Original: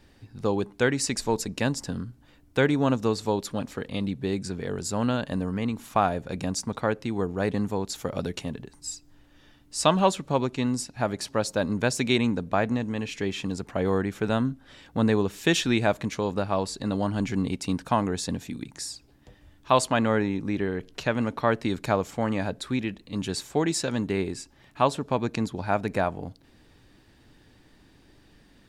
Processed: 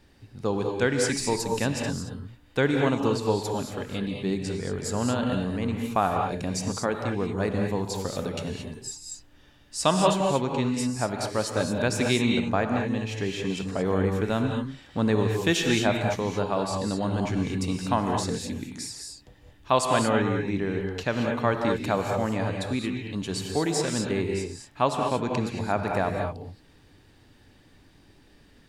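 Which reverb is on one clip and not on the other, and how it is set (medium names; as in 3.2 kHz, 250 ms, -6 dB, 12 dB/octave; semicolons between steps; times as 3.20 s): gated-style reverb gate 250 ms rising, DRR 2 dB; trim -1.5 dB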